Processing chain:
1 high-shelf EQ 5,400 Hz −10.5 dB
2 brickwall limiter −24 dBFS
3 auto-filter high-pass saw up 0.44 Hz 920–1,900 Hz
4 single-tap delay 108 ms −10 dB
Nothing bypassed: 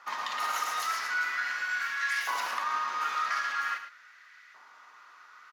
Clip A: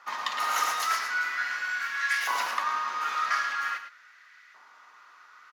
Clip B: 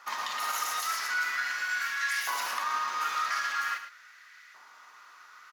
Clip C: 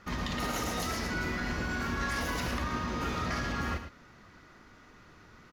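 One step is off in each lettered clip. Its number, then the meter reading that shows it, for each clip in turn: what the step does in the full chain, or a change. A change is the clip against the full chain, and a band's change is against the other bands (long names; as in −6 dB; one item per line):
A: 2, change in crest factor +2.5 dB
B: 1, 8 kHz band +5.0 dB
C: 3, 500 Hz band +14.5 dB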